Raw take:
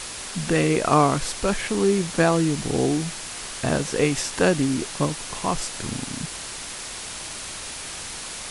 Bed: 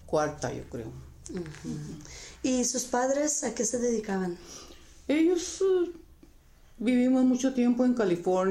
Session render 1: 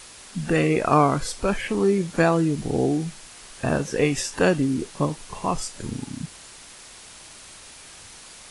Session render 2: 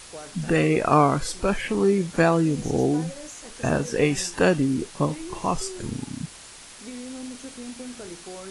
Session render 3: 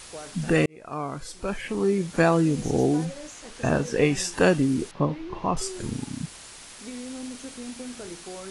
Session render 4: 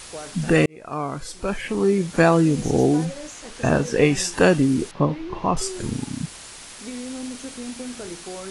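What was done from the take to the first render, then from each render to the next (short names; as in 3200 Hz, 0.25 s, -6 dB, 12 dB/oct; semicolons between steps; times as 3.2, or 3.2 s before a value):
noise print and reduce 10 dB
add bed -14 dB
0.66–2.39 fade in; 3.05–4.2 high shelf 9400 Hz -10 dB; 4.91–5.57 air absorption 270 m
gain +4 dB; limiter -2 dBFS, peak gain reduction 1 dB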